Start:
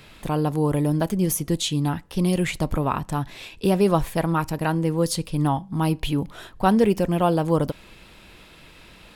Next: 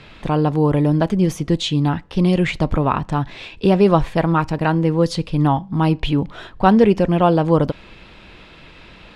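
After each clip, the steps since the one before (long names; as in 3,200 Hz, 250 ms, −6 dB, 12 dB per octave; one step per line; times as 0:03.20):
low-pass filter 4,100 Hz 12 dB per octave
level +5.5 dB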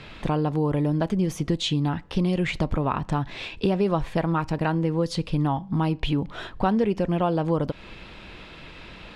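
downward compressor 3 to 1, threshold −22 dBFS, peak gain reduction 11 dB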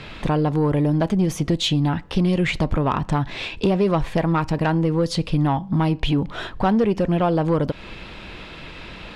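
soft clipping −16 dBFS, distortion −18 dB
level +5.5 dB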